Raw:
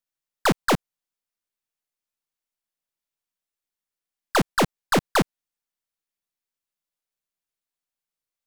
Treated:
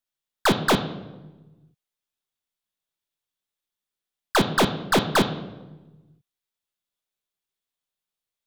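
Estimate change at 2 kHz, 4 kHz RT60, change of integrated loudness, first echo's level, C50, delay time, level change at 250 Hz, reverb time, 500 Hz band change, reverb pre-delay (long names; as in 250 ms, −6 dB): +1.0 dB, 0.75 s, +1.0 dB, no echo audible, 11.5 dB, no echo audible, +1.5 dB, 1.2 s, +1.5 dB, 3 ms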